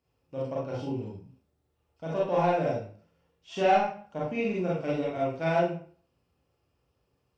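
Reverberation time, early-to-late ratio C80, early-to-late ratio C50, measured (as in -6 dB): 0.45 s, 7.5 dB, 1.5 dB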